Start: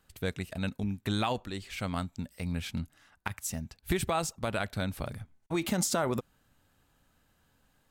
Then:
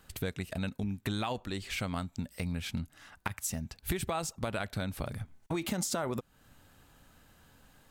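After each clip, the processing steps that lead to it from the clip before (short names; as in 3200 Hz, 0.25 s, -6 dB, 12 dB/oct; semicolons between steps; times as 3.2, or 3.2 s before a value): compressor 3:1, threshold -43 dBFS, peak gain reduction 14 dB; gain +8.5 dB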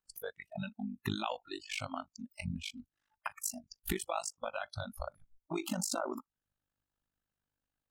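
AM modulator 50 Hz, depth 95%; spectral noise reduction 29 dB; gain +2.5 dB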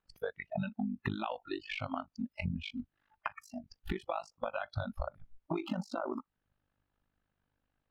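compressor, threshold -41 dBFS, peak gain reduction 12 dB; air absorption 330 m; gain +10 dB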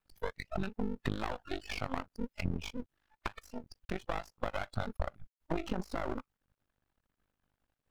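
half-wave rectifier; gain +4 dB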